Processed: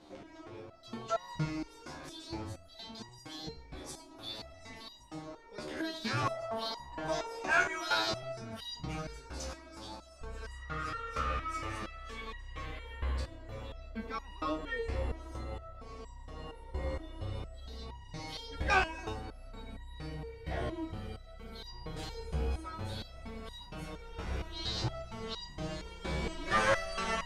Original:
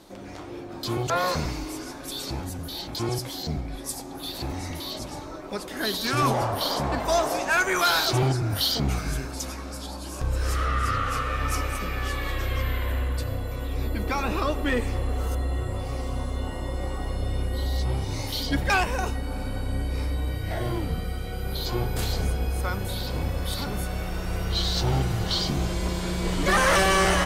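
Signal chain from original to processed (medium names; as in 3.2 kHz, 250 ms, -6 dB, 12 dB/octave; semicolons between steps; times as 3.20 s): distance through air 79 m; resonator arpeggio 4.3 Hz 76–950 Hz; trim +3.5 dB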